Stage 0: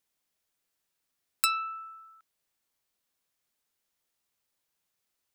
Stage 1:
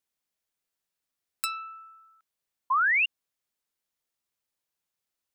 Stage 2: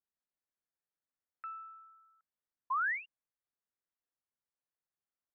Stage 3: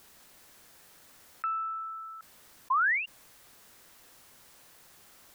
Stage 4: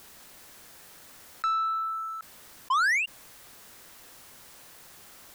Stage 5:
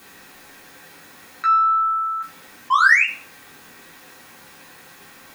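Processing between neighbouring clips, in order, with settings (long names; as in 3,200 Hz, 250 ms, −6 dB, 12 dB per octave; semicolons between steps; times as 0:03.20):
sound drawn into the spectrogram rise, 0:02.70–0:03.06, 990–2,900 Hz −18 dBFS; level −5 dB
Butterworth low-pass 2,000 Hz 48 dB per octave; level −8.5 dB
envelope flattener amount 50%; level +6.5 dB
leveller curve on the samples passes 2
convolution reverb RT60 0.45 s, pre-delay 3 ms, DRR −4.5 dB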